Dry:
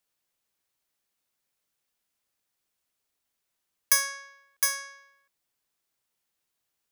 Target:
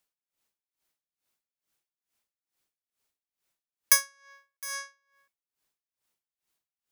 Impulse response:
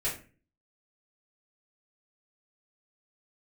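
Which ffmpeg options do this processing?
-filter_complex "[0:a]asplit=2[a][b];[b]asplit=3[c][d][e];[c]bandpass=f=300:t=q:w=8,volume=0dB[f];[d]bandpass=f=870:t=q:w=8,volume=-6dB[g];[e]bandpass=f=2.24k:t=q:w=8,volume=-9dB[h];[f][g][h]amix=inputs=3:normalize=0[i];[1:a]atrim=start_sample=2205[j];[i][j]afir=irnorm=-1:irlink=0,volume=-8.5dB[k];[a][k]amix=inputs=2:normalize=0,aeval=exprs='val(0)*pow(10,-24*(0.5-0.5*cos(2*PI*2.3*n/s))/20)':c=same,volume=2dB"

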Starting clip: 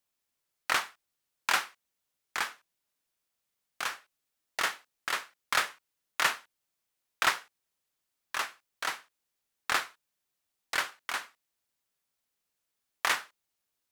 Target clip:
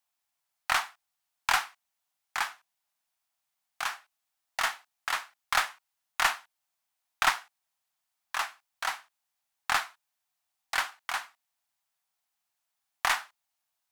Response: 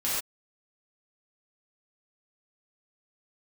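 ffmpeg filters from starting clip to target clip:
-af "aeval=exprs='0.335*(cos(1*acos(clip(val(0)/0.335,-1,1)))-cos(1*PI/2))+0.106*(cos(2*acos(clip(val(0)/0.335,-1,1)))-cos(2*PI/2))':c=same,lowshelf=f=600:t=q:w=3:g=-6.5"

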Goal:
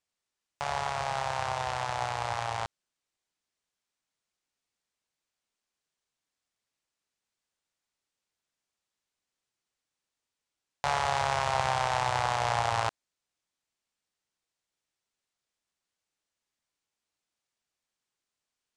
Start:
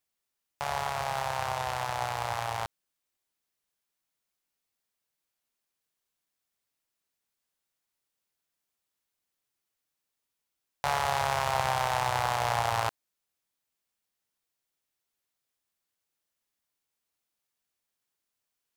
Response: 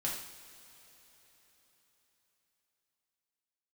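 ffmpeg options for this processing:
-af "lowpass=f=8.6k:w=0.5412,lowpass=f=8.6k:w=1.3066"

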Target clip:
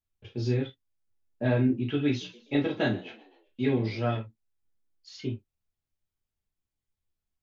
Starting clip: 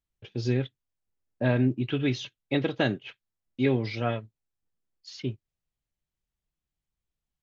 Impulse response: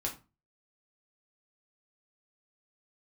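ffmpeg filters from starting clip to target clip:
-filter_complex "[0:a]asettb=1/sr,asplit=3[a][b][c];[a]atrim=end=2.084[d];[b]atrim=start=2.08:end=4.16,asetpts=PTS-STARTPTS,afade=t=in:d=0.004:c=qsin,afade=t=out:st=2.076:d=0.004:c=qsin,asplit=5[e][f][g][h][i];[f]adelay=127,afreqshift=53,volume=-19.5dB[j];[g]adelay=254,afreqshift=106,volume=-25.9dB[k];[h]adelay=381,afreqshift=159,volume=-32.3dB[l];[i]adelay=508,afreqshift=212,volume=-38.6dB[m];[e][j][k][l][m]amix=inputs=5:normalize=0,atrim=end_sample=91728[n];[c]atrim=start=4.156[o];[d][n]acrossfade=d=0.004:c1=hsin:c2=qsin[p];[p][o]acrossfade=d=0.004:c1=qsin:c2=hsin[q];[1:a]atrim=start_sample=2205,atrim=end_sample=3528[r];[q][r]afir=irnorm=-1:irlink=0,volume=-4dB"

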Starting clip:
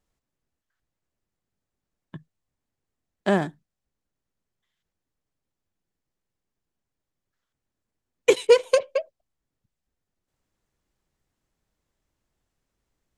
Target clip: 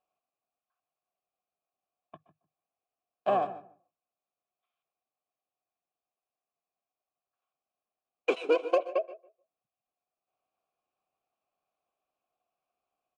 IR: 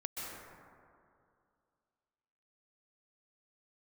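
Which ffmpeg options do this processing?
-filter_complex "[0:a]acontrast=86,asplit=3[a][b][c];[b]asetrate=29433,aresample=44100,atempo=1.49831,volume=-6dB[d];[c]asetrate=33038,aresample=44100,atempo=1.33484,volume=-17dB[e];[a][d][e]amix=inputs=3:normalize=0,asplit=3[f][g][h];[f]bandpass=f=730:t=q:w=8,volume=0dB[i];[g]bandpass=f=1.09k:t=q:w=8,volume=-6dB[j];[h]bandpass=f=2.44k:t=q:w=8,volume=-9dB[k];[i][j][k]amix=inputs=3:normalize=0,asplit=2[l][m];[m]adelay=151,lowpass=f=970:p=1,volume=-13dB,asplit=2[n][o];[o]adelay=151,lowpass=f=970:p=1,volume=0.18[p];[l][n][p]amix=inputs=3:normalize=0,asplit=2[q][r];[1:a]atrim=start_sample=2205,afade=t=out:st=0.2:d=0.01,atrim=end_sample=9261[s];[r][s]afir=irnorm=-1:irlink=0,volume=-7.5dB[t];[q][t]amix=inputs=2:normalize=0,volume=-2.5dB"

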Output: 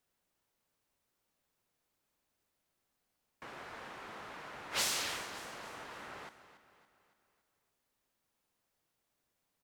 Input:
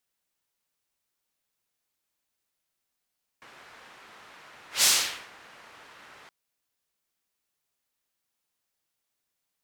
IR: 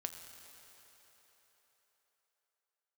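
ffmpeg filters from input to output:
-af "acompressor=threshold=-30dB:ratio=6,tiltshelf=f=1.5k:g=5,aecho=1:1:281|562|843|1124|1405:0.211|0.104|0.0507|0.0249|0.0122,volume=2dB"

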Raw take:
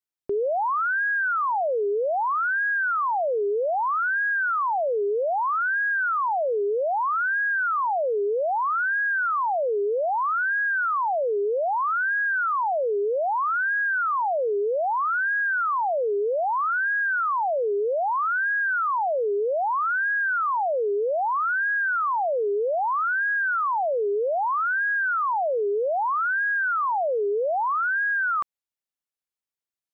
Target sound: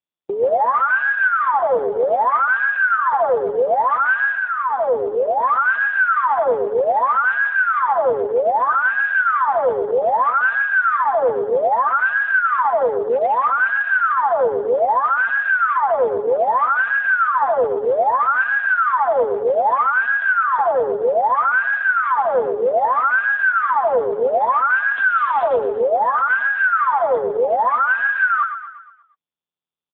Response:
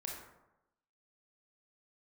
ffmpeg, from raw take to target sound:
-filter_complex "[0:a]highpass=290,afwtdn=0.0447,asettb=1/sr,asplit=3[a][b][c];[a]atrim=end=4.354[d];[b]atrim=start=4.35:end=5.41,asetpts=PTS-STARTPTS,afade=t=in:d=0.004:c=qsin,afade=t=out:st=1.056:d=0.004:c=qsin,lowpass=f=1k:p=1[e];[c]atrim=start=5.406[f];[d][e]acrossfade=d=0.004:c1=hsin:c2=qsin[g];[g][f]acrossfade=d=0.004:c1=qsin:c2=hsin,aecho=1:1:5.9:0.52,asplit=3[h][i][j];[h]afade=t=out:st=12.92:d=0.02[k];[i]asoftclip=type=hard:threshold=-20dB,afade=t=in:st=12.92:d=0.02,afade=t=out:st=13.34:d=0.02[l];[j]afade=t=in:st=13.34:d=0.02[m];[k][l][m]amix=inputs=3:normalize=0,asplit=3[n][o][p];[n]afade=t=out:st=24.92:d=0.02[q];[o]acrusher=bits=6:dc=4:mix=0:aa=0.000001,afade=t=in:st=24.92:d=0.02,afade=t=out:st=25.43:d=0.02[r];[p]afade=t=in:st=25.43:d=0.02[s];[q][r][s]amix=inputs=3:normalize=0,aecho=1:1:119|238|357|476|595|714:0.376|0.188|0.094|0.047|0.0235|0.0117,volume=7dB" -ar 8000 -c:a libopencore_amrnb -b:a 5150

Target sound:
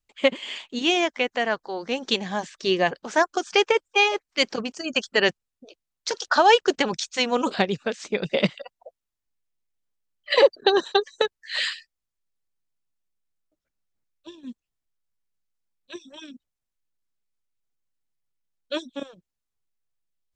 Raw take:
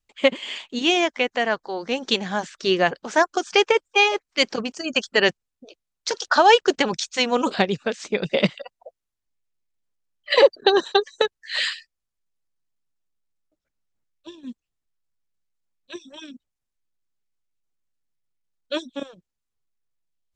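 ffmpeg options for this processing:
-filter_complex "[0:a]asettb=1/sr,asplit=3[a][b][c];[a]atrim=end=2.164[d];[b]atrim=start=2.16:end=2.88,asetpts=PTS-STARTPTS,afade=t=in:d=0.004:c=qsin,afade=t=out:st=0.716:d=0.004:c=qsin,bandreject=f=1.4k:w=5.6[e];[c]atrim=start=2.876[f];[d][e]acrossfade=d=0.004:c1=hsin:c2=qsin[g];[g][f]acrossfade=d=0.004:c1=qsin:c2=hsin,volume=-2dB"

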